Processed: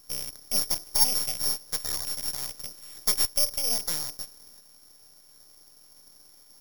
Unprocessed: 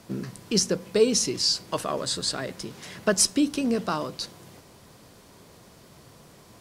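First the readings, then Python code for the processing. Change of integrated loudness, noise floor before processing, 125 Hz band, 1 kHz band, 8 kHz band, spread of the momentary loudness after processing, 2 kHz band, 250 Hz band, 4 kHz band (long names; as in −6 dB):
0.0 dB, −53 dBFS, −12.5 dB, −8.0 dB, −1.0 dB, 13 LU, −8.5 dB, −21.0 dB, −1.5 dB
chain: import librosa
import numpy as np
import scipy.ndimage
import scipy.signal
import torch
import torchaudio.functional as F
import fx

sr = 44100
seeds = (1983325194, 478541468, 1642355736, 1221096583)

y = fx.rattle_buzz(x, sr, strikes_db=-36.0, level_db=-21.0)
y = np.abs(y)
y = (np.kron(scipy.signal.resample_poly(y, 1, 8), np.eye(8)[0]) * 8)[:len(y)]
y = y * 10.0 ** (-11.0 / 20.0)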